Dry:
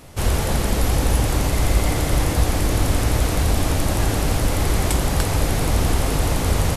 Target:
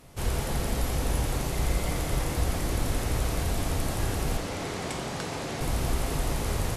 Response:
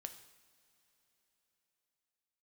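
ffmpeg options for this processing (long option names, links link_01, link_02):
-filter_complex "[0:a]asettb=1/sr,asplit=3[link_01][link_02][link_03];[link_01]atrim=end=4.374[link_04];[link_02]atrim=start=4.37:end=5.61,asetpts=PTS-STARTPTS,afade=type=in:duration=0.004:curve=qsin,afade=type=out:start_time=1.236:duration=0.004:curve=qsin,highpass=160,lowpass=7100[link_05];[link_03]atrim=start=5.606[link_06];[link_04][link_05]acrossfade=duration=0.004:curve1=hsin:curve2=qsin[link_07];[link_07][link_06]acrossfade=duration=0.004:curve1=qsin:curve2=hsin[link_08];[1:a]atrim=start_sample=2205,asetrate=33075,aresample=44100[link_09];[link_08][link_09]afir=irnorm=-1:irlink=0,volume=-5.5dB"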